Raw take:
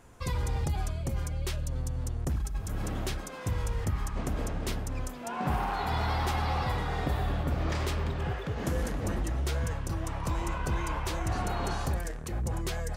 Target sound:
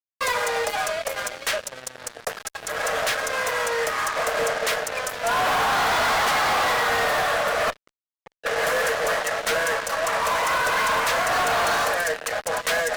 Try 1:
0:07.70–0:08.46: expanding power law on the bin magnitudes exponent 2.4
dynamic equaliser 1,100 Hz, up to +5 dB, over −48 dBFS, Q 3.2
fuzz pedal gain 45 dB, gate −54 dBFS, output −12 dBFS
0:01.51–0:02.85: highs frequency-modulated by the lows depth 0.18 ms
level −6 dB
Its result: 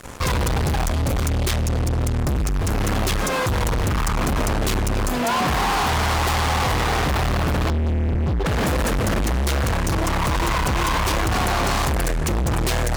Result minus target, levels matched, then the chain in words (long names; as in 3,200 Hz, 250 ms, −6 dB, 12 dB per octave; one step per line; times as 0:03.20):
500 Hz band −3.0 dB
0:07.70–0:08.46: expanding power law on the bin magnitudes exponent 2.4
dynamic equaliser 1,100 Hz, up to +5 dB, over −48 dBFS, Q 3.2
Chebyshev high-pass with heavy ripple 440 Hz, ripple 9 dB
fuzz pedal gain 45 dB, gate −54 dBFS, output −12 dBFS
0:01.51–0:02.85: highs frequency-modulated by the lows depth 0.18 ms
level −6 dB